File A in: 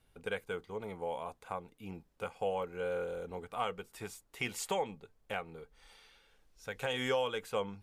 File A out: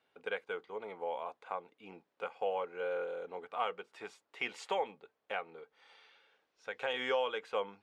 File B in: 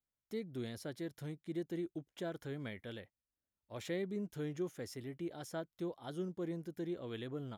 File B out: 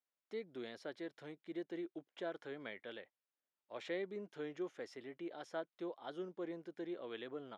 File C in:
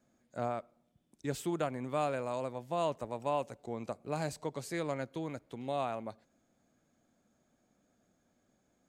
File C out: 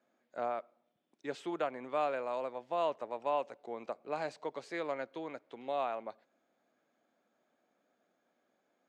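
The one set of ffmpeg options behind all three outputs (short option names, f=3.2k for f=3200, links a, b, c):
-af "highpass=400,lowpass=3.5k,volume=1dB"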